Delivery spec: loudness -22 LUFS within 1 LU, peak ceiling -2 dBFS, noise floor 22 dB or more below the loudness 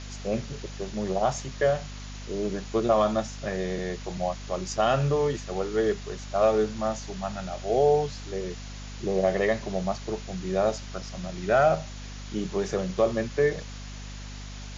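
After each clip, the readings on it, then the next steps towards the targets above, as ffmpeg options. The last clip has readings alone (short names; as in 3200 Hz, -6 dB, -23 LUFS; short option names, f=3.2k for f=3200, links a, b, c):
hum 50 Hz; harmonics up to 250 Hz; hum level -37 dBFS; noise floor -39 dBFS; noise floor target -50 dBFS; loudness -27.5 LUFS; peak -11.0 dBFS; loudness target -22.0 LUFS
-> -af "bandreject=f=50:t=h:w=6,bandreject=f=100:t=h:w=6,bandreject=f=150:t=h:w=6,bandreject=f=200:t=h:w=6,bandreject=f=250:t=h:w=6"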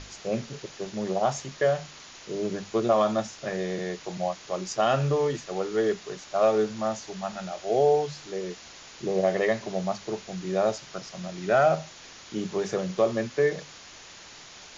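hum none; noise floor -47 dBFS; noise floor target -50 dBFS
-> -af "afftdn=nr=6:nf=-47"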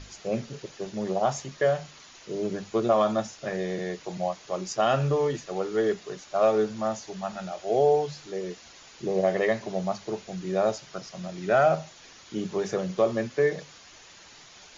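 noise floor -51 dBFS; loudness -27.5 LUFS; peak -10.5 dBFS; loudness target -22.0 LUFS
-> -af "volume=5.5dB"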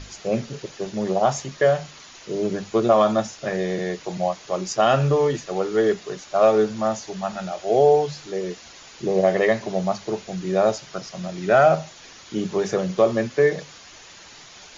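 loudness -22.0 LUFS; peak -5.0 dBFS; noise floor -45 dBFS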